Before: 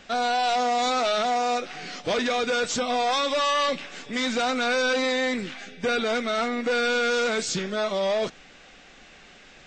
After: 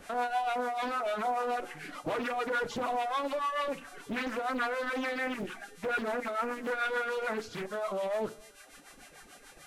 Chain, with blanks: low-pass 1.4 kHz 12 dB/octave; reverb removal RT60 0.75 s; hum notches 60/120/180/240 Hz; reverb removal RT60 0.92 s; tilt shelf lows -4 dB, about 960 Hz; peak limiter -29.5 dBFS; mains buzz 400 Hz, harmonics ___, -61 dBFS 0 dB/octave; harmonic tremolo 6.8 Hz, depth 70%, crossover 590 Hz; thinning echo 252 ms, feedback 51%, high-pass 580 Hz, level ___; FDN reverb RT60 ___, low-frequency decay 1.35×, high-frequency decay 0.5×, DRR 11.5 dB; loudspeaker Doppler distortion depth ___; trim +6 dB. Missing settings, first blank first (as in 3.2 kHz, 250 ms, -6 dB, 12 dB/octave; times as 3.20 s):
30, -24 dB, 0.44 s, 0.79 ms